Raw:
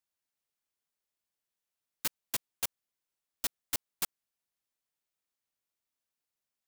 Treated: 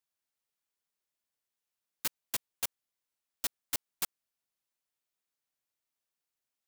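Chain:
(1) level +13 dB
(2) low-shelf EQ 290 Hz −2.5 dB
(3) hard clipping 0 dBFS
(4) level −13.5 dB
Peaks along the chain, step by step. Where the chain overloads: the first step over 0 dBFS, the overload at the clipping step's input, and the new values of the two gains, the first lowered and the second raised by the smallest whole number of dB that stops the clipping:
−3.5, −3.5, −3.5, −17.0 dBFS
no step passes full scale

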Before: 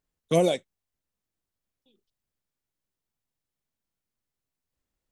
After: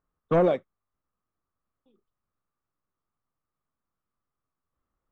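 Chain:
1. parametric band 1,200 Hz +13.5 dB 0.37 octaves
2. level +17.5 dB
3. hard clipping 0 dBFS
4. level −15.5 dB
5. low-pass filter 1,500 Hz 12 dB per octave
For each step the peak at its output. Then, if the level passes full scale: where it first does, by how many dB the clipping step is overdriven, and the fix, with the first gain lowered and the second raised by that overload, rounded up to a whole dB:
−9.0, +8.5, 0.0, −15.5, −15.0 dBFS
step 2, 8.5 dB
step 2 +8.5 dB, step 4 −6.5 dB

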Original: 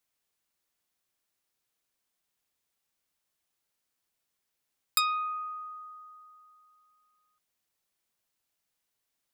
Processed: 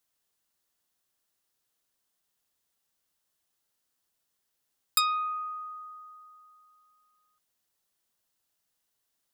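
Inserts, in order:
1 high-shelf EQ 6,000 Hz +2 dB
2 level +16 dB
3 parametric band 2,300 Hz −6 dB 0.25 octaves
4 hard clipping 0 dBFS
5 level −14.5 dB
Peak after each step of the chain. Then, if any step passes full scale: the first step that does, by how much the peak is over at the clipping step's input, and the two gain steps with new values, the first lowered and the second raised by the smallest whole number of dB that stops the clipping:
−7.0, +9.0, +8.5, 0.0, −14.5 dBFS
step 2, 8.5 dB
step 2 +7 dB, step 5 −5.5 dB

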